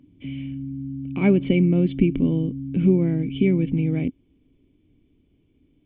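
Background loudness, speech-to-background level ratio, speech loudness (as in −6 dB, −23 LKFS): −32.5 LKFS, 11.0 dB, −21.5 LKFS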